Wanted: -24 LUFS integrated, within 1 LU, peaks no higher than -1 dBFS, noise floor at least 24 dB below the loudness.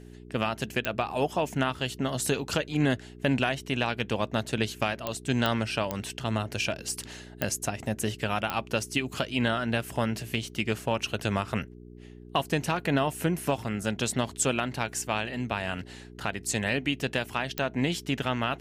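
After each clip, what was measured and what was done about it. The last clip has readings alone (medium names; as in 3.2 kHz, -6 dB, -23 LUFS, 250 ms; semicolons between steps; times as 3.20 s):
clicks found 7; hum 60 Hz; highest harmonic 420 Hz; hum level -46 dBFS; loudness -29.5 LUFS; peak level -11.0 dBFS; loudness target -24.0 LUFS
-> de-click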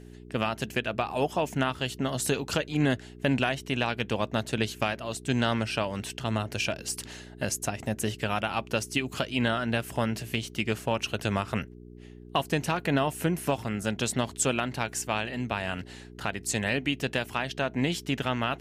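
clicks found 0; hum 60 Hz; highest harmonic 420 Hz; hum level -46 dBFS
-> de-hum 60 Hz, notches 7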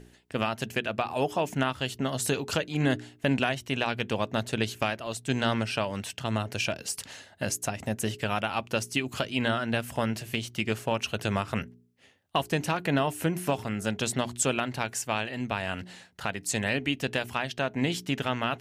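hum not found; loudness -29.5 LUFS; peak level -11.0 dBFS; loudness target -24.0 LUFS
-> trim +5.5 dB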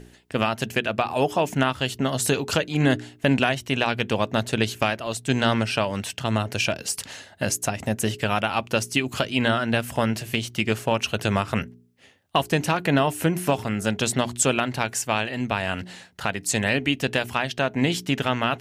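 loudness -24.0 LUFS; peak level -5.5 dBFS; noise floor -52 dBFS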